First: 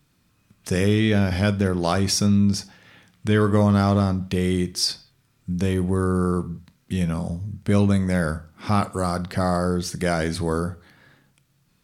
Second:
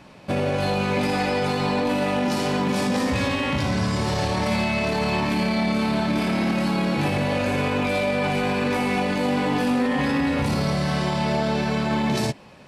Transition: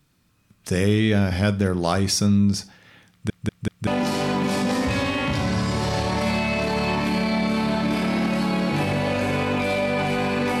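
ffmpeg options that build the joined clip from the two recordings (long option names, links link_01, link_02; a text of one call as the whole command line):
ffmpeg -i cue0.wav -i cue1.wav -filter_complex "[0:a]apad=whole_dur=10.6,atrim=end=10.6,asplit=4[link_01][link_02][link_03][link_04];[link_01]atrim=end=3.302[link_05];[link_02]atrim=start=3.108:end=3.302[link_06];[link_03]atrim=start=3.108:end=3.302[link_07];[link_04]atrim=start=3.108:end=3.302[link_08];[1:a]atrim=start=2.118:end=8.85[link_09];[link_05][link_06]acrossfade=duration=0.004:curve1=hsin:curve2=hsin[link_10];[link_10][link_07]acrossfade=duration=0.004:curve1=hsin:curve2=hsin[link_11];[link_11][link_08]acrossfade=duration=0.004:curve1=hsin:curve2=hsin[link_12];[link_12][link_09]acrossfade=duration=0.004:curve1=hsin:curve2=hsin" out.wav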